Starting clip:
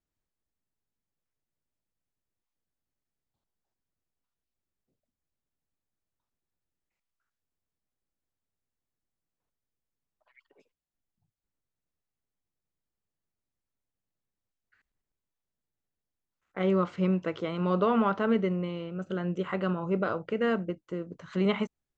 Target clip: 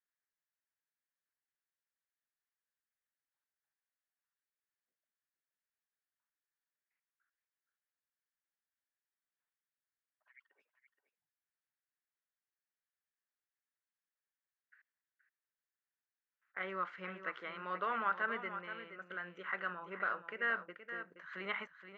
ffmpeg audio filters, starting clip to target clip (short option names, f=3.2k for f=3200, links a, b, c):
-filter_complex "[0:a]bandpass=f=1.7k:t=q:w=3.6:csg=0,asplit=2[a][b];[b]aecho=0:1:473:0.316[c];[a][c]amix=inputs=2:normalize=0,volume=4dB"